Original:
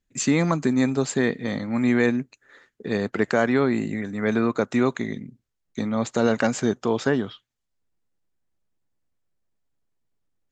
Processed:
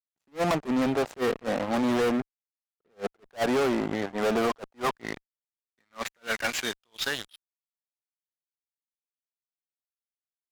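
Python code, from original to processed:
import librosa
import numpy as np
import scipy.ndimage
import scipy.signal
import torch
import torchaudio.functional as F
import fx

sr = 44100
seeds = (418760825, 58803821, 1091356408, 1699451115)

y = fx.filter_sweep_bandpass(x, sr, from_hz=720.0, to_hz=5300.0, start_s=4.54, end_s=7.65, q=2.2)
y = fx.fuzz(y, sr, gain_db=39.0, gate_db=-47.0)
y = fx.attack_slew(y, sr, db_per_s=390.0)
y = F.gain(torch.from_numpy(y), -8.5).numpy()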